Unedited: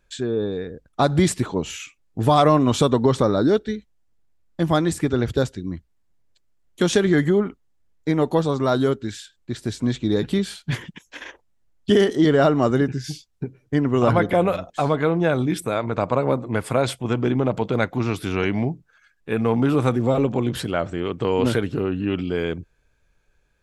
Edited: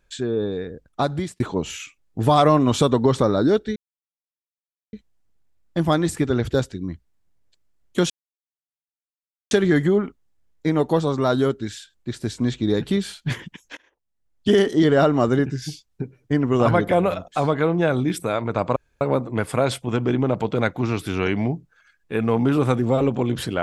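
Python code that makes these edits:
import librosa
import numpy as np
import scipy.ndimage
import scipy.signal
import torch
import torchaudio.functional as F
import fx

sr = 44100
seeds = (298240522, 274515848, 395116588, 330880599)

y = fx.edit(x, sr, fx.fade_out_span(start_s=0.86, length_s=0.54),
    fx.insert_silence(at_s=3.76, length_s=1.17),
    fx.insert_silence(at_s=6.93, length_s=1.41),
    fx.fade_in_from(start_s=11.19, length_s=0.76, curve='qua', floor_db=-24.0),
    fx.insert_room_tone(at_s=16.18, length_s=0.25), tone=tone)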